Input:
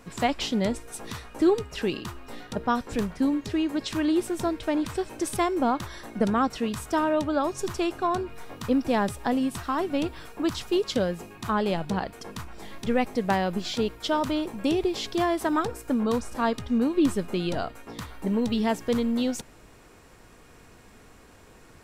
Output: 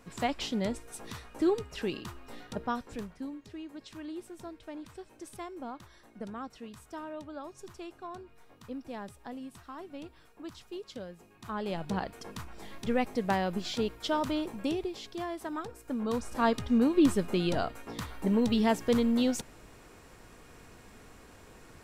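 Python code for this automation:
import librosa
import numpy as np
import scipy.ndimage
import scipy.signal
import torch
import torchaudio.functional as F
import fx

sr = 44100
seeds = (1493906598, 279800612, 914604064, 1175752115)

y = fx.gain(x, sr, db=fx.line((2.57, -6.0), (3.36, -17.0), (11.17, -17.0), (11.94, -4.5), (14.55, -4.5), (15.0, -12.0), (15.73, -12.0), (16.46, -1.0)))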